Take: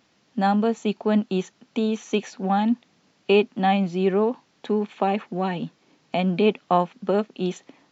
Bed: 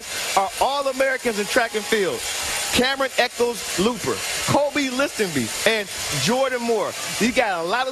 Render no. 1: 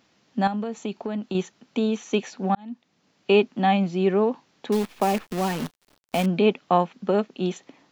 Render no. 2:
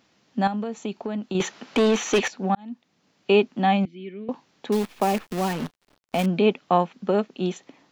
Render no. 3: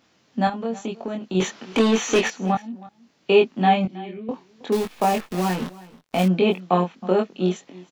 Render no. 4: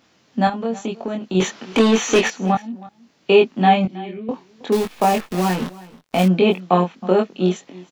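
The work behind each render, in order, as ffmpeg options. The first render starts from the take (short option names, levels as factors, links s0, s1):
-filter_complex "[0:a]asettb=1/sr,asplit=3[s0][s1][s2];[s0]atrim=end=0.474[s3];[s1]atrim=start=0.47:end=1.35,asetpts=PTS-STARTPTS,afade=t=in:d=0.004:c=qsin,afade=t=out:st=0.876:d=0.004:c=qsin,acompressor=threshold=0.0631:ratio=10:attack=3.2:release=140:knee=1:detection=peak[s4];[s2]atrim=start=1.346[s5];[s3][s4]acrossfade=d=0.004:c1=hsin:c2=qsin[s6];[s6][s5]acrossfade=d=0.004:c1=qsin:c2=hsin,asettb=1/sr,asplit=3[s7][s8][s9];[s7]atrim=end=4.724[s10];[s8]atrim=start=4.72:end=6.26,asetpts=PTS-STARTPTS,afade=t=in:d=0.004:c=qsin,afade=t=out:st=1.536:d=0.004:c=qsin,acrusher=bits=6:dc=4:mix=0:aa=0.000001[s11];[s9]atrim=start=6.256[s12];[s10][s11]acrossfade=d=0.004:c1=hsin:c2=qsin[s13];[s13][s12]acrossfade=d=0.004:c1=qsin:c2=hsin,asplit=2[s14][s15];[s14]atrim=end=2.55,asetpts=PTS-STARTPTS,afade=t=out:st=2.546:d=0.004:c=hsin[s16];[s15]atrim=start=2.55,asetpts=PTS-STARTPTS,afade=t=in:d=0.8[s17];[s16][s17]concat=n=2:v=0:a=1"
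-filter_complex "[0:a]asettb=1/sr,asplit=3[s0][s1][s2];[s0]atrim=end=1.404[s3];[s1]atrim=start=1.4:end=2.28,asetpts=PTS-STARTPTS,afade=t=in:d=0.004:c=qsin,afade=t=out:st=0.876:d=0.004:c=qsin,asplit=2[s4][s5];[s5]highpass=f=720:p=1,volume=17.8,asoftclip=type=tanh:threshold=0.282[s6];[s4][s6]amix=inputs=2:normalize=0,lowpass=f=3000:p=1,volume=0.501[s7];[s2]atrim=start=2.276[s8];[s3][s7]acrossfade=d=0.004:c1=hsin:c2=qsin[s9];[s9][s8]acrossfade=d=0.004:c1=qsin:c2=hsin,asettb=1/sr,asplit=3[s10][s11][s12];[s10]atrim=end=3.854[s13];[s11]atrim=start=3.85:end=4.29,asetpts=PTS-STARTPTS,afade=t=in:d=0.004:c=qsin,afade=t=out:st=0.436:d=0.004:c=qsin,asplit=3[s14][s15][s16];[s14]bandpass=f=270:t=q:w=8,volume=1[s17];[s15]bandpass=f=2290:t=q:w=8,volume=0.501[s18];[s16]bandpass=f=3010:t=q:w=8,volume=0.355[s19];[s17][s18][s19]amix=inputs=3:normalize=0[s20];[s12]atrim=start=4.286[s21];[s13][s20]acrossfade=d=0.004:c1=hsin:c2=qsin[s22];[s22][s21]acrossfade=d=0.004:c1=qsin:c2=hsin,asettb=1/sr,asplit=3[s23][s24][s25];[s23]atrim=end=5.534[s26];[s24]atrim=start=5.53:end=6.19,asetpts=PTS-STARTPTS,afade=t=in:d=0.004:c=qsin,afade=t=out:st=0.656:d=0.004:c=qsin,highshelf=f=5800:g=-9[s27];[s25]atrim=start=6.186[s28];[s26][s27]acrossfade=d=0.004:c1=hsin:c2=qsin[s29];[s29][s28]acrossfade=d=0.004:c1=qsin:c2=hsin"
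-filter_complex "[0:a]asplit=2[s0][s1];[s1]adelay=22,volume=0.75[s2];[s0][s2]amix=inputs=2:normalize=0,aecho=1:1:319:0.0944"
-af "volume=1.5,alimiter=limit=0.794:level=0:latency=1"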